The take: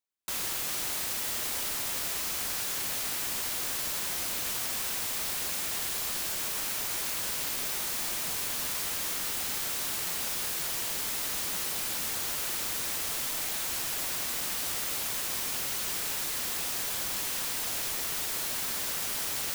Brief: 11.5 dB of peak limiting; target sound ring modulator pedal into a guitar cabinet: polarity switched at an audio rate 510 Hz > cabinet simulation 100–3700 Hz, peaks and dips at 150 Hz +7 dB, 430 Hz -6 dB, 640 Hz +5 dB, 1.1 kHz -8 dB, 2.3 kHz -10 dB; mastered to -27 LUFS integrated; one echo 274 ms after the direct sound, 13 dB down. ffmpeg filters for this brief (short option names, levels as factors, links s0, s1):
-af "alimiter=level_in=2:limit=0.0631:level=0:latency=1,volume=0.501,aecho=1:1:274:0.224,aeval=exprs='val(0)*sgn(sin(2*PI*510*n/s))':c=same,highpass=100,equalizer=f=150:t=q:w=4:g=7,equalizer=f=430:t=q:w=4:g=-6,equalizer=f=640:t=q:w=4:g=5,equalizer=f=1100:t=q:w=4:g=-8,equalizer=f=2300:t=q:w=4:g=-10,lowpass=f=3700:w=0.5412,lowpass=f=3700:w=1.3066,volume=10.6"